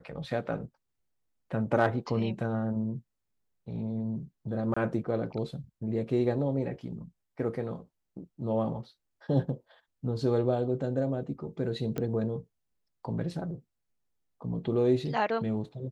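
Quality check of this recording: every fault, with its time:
4.74–4.76 s: dropout 25 ms
11.98 s: pop -19 dBFS

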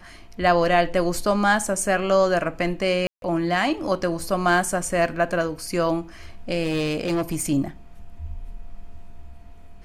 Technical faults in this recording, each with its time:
3.07–3.22 s: dropout 152 ms
6.63–7.46 s: clipped -19.5 dBFS

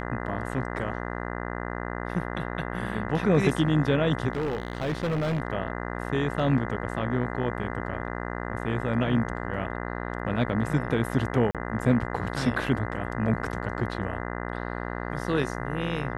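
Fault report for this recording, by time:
buzz 60 Hz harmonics 34 -33 dBFS
4.33–5.40 s: clipped -24 dBFS
11.51–11.55 s: dropout 37 ms

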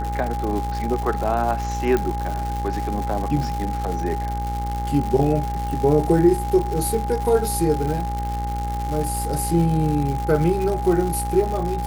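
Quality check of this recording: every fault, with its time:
buzz 60 Hz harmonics 37 -27 dBFS
crackle 240 per s -26 dBFS
whine 820 Hz -27 dBFS
1.97 s: pop -10 dBFS

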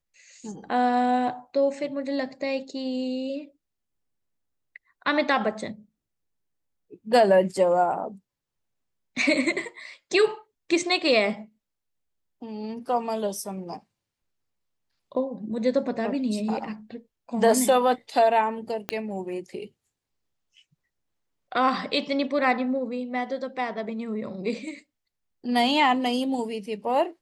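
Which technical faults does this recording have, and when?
18.89 s: pop -12 dBFS

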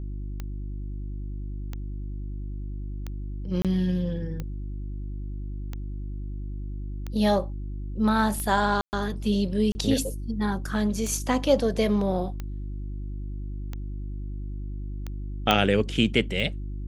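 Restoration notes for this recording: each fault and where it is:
hum 50 Hz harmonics 7 -33 dBFS
tick 45 rpm -20 dBFS
3.62–3.65 s: dropout 27 ms
8.81–8.93 s: dropout 119 ms
9.72–9.75 s: dropout 30 ms
15.51 s: pop -6 dBFS

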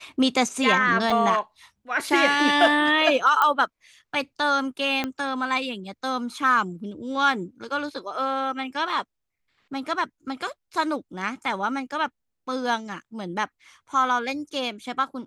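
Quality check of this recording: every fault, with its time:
1.10 s: dropout 3.6 ms
3.42 s: pop -9 dBFS
5.04 s: pop -12 dBFS

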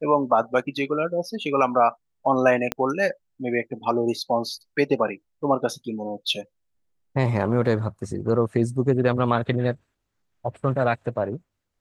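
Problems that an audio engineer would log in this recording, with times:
2.72 s: pop -9 dBFS

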